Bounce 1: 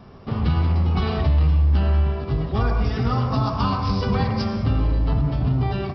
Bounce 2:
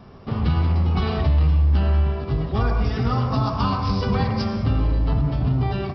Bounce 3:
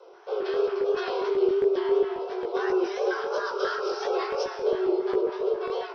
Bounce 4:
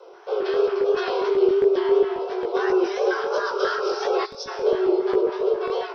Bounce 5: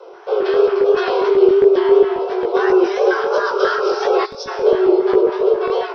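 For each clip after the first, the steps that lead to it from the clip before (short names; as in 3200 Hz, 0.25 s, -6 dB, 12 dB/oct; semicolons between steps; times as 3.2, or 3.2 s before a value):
nothing audible
frequency shift +320 Hz; LFO notch square 3.7 Hz 510–1800 Hz; chorus 2.9 Hz, delay 16 ms, depth 7.4 ms; gain -1.5 dB
spectral gain 4.26–4.47, 280–3300 Hz -16 dB; gain +4.5 dB
high shelf 4900 Hz -7.5 dB; gain +7 dB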